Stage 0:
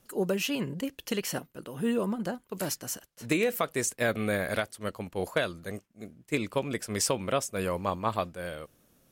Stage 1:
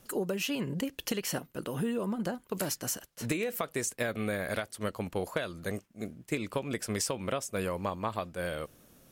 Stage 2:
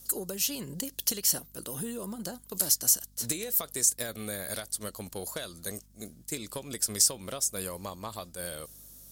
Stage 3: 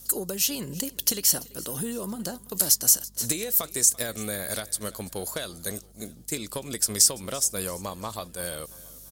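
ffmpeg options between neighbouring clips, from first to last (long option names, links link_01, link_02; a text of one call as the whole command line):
ffmpeg -i in.wav -af "acompressor=threshold=-35dB:ratio=6,volume=5.5dB" out.wav
ffmpeg -i in.wav -af "asoftclip=type=tanh:threshold=-17dB,aeval=exprs='val(0)+0.00224*(sin(2*PI*50*n/s)+sin(2*PI*2*50*n/s)/2+sin(2*PI*3*50*n/s)/3+sin(2*PI*4*50*n/s)/4+sin(2*PI*5*50*n/s)/5)':channel_layout=same,aexciter=amount=5:drive=6.6:freq=3700,volume=-5.5dB" out.wav
ffmpeg -i in.wav -af "aecho=1:1:338|676|1014:0.0891|0.041|0.0189,volume=4.5dB" out.wav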